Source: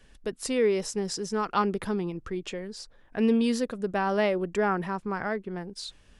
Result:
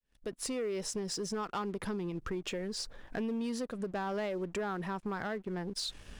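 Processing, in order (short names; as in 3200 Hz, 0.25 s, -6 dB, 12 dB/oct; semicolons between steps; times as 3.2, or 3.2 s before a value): opening faded in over 0.88 s; compressor 5:1, threshold -41 dBFS, peak gain reduction 19 dB; sample leveller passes 2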